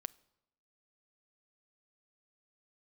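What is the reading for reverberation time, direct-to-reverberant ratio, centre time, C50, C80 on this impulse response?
0.85 s, 16.5 dB, 1 ms, 23.5 dB, 26.0 dB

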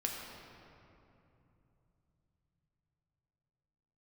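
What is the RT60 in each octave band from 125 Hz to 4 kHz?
5.9, 4.0, 3.1, 2.8, 2.3, 1.6 s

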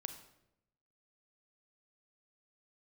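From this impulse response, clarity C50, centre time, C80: 9.5 dB, 13 ms, 12.0 dB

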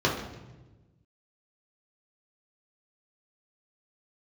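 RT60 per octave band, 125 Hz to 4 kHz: 1.8, 1.6, 1.3, 1.0, 0.95, 0.85 s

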